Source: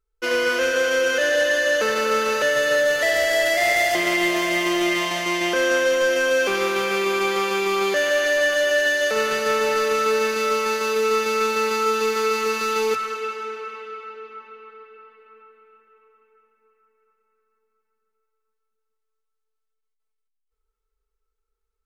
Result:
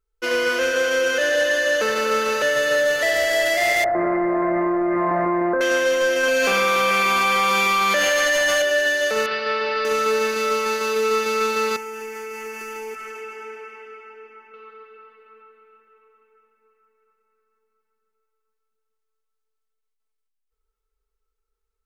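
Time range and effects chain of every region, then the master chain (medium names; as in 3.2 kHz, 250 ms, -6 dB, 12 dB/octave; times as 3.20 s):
3.84–5.61 s: inverse Chebyshev low-pass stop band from 2.9 kHz + level flattener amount 100%
6.23–8.62 s: peaking EQ 400 Hz -13.5 dB 0.27 oct + flutter echo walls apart 8.6 m, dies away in 0.66 s + level flattener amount 100%
9.26–9.85 s: elliptic low-pass 5 kHz + bass shelf 390 Hz -7 dB
11.76–14.54 s: static phaser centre 790 Hz, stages 8 + compression 4:1, threshold -30 dBFS
whole clip: none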